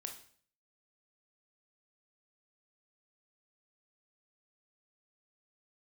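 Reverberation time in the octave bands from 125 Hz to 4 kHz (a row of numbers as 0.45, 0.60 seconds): 0.65, 0.55, 0.55, 0.50, 0.50, 0.50 seconds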